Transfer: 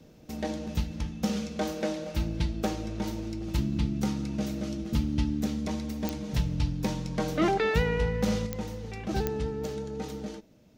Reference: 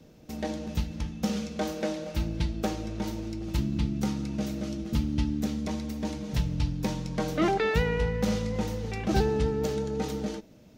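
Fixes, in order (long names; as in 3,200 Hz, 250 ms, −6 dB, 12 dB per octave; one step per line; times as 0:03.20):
click removal
level correction +5 dB, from 0:08.46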